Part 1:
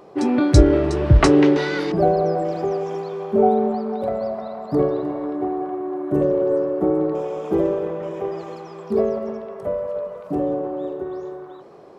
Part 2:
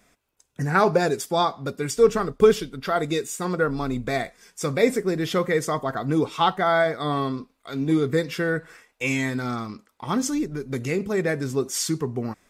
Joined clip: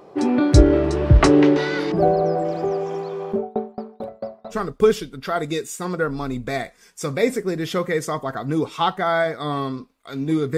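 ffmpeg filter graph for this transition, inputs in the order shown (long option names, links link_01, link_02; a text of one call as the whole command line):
ffmpeg -i cue0.wav -i cue1.wav -filter_complex "[0:a]asplit=3[link_01][link_02][link_03];[link_01]afade=type=out:start_time=3.32:duration=0.02[link_04];[link_02]aeval=exprs='val(0)*pow(10,-32*if(lt(mod(4.5*n/s,1),2*abs(4.5)/1000),1-mod(4.5*n/s,1)/(2*abs(4.5)/1000),(mod(4.5*n/s,1)-2*abs(4.5)/1000)/(1-2*abs(4.5)/1000))/20)':channel_layout=same,afade=type=in:start_time=3.32:duration=0.02,afade=type=out:start_time=4.57:duration=0.02[link_05];[link_03]afade=type=in:start_time=4.57:duration=0.02[link_06];[link_04][link_05][link_06]amix=inputs=3:normalize=0,apad=whole_dur=10.57,atrim=end=10.57,atrim=end=4.57,asetpts=PTS-STARTPTS[link_07];[1:a]atrim=start=2.09:end=8.17,asetpts=PTS-STARTPTS[link_08];[link_07][link_08]acrossfade=duration=0.08:curve1=tri:curve2=tri" out.wav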